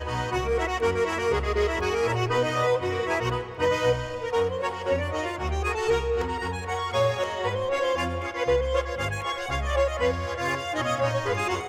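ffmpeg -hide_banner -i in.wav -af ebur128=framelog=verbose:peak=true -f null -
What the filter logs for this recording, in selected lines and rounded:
Integrated loudness:
  I:         -26.2 LUFS
  Threshold: -36.2 LUFS
Loudness range:
  LRA:         1.7 LU
  Threshold: -46.3 LUFS
  LRA low:   -26.9 LUFS
  LRA high:  -25.3 LUFS
True peak:
  Peak:      -11.9 dBFS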